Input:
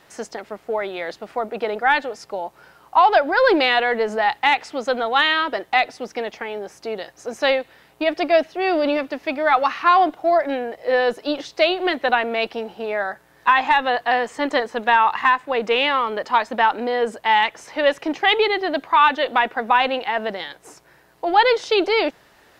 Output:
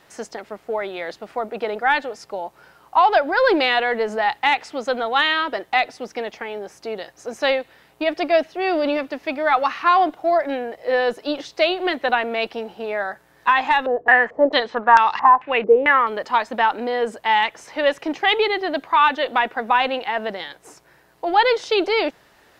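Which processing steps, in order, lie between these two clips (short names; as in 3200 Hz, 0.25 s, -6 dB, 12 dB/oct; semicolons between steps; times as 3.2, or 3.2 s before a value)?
13.86–16.07 stepped low-pass 4.5 Hz 420–5300 Hz; gain -1 dB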